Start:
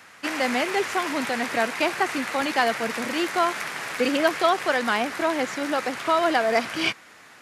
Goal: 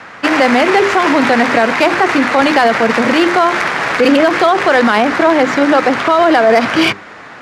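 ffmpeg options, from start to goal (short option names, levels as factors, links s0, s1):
-filter_complex "[0:a]equalizer=f=2600:t=o:w=1.3:g=-3,bandreject=f=50:t=h:w=6,bandreject=f=100:t=h:w=6,bandreject=f=150:t=h:w=6,bandreject=f=200:t=h:w=6,bandreject=f=250:t=h:w=6,bandreject=f=300:t=h:w=6,bandreject=f=350:t=h:w=6,bandreject=f=400:t=h:w=6,acrossover=split=650[s0][s1];[s1]adynamicsmooth=sensitivity=2:basefreq=3100[s2];[s0][s2]amix=inputs=2:normalize=0,alimiter=level_in=10:limit=0.891:release=50:level=0:latency=1,volume=0.891"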